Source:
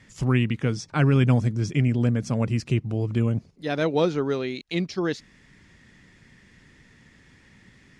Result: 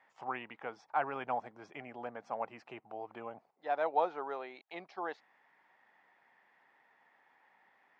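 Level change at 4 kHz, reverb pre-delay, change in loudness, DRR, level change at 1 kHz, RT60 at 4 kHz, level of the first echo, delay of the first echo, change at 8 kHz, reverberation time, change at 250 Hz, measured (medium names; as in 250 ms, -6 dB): -20.0 dB, no reverb, -15.0 dB, no reverb, 0.0 dB, no reverb, no echo, no echo, no reading, no reverb, -26.0 dB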